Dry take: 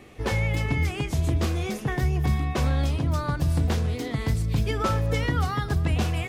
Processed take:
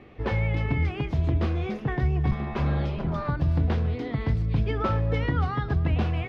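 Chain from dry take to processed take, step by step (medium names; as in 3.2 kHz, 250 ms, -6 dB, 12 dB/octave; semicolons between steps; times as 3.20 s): 2.31–3.28 s: comb filter that takes the minimum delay 5 ms; distance through air 300 m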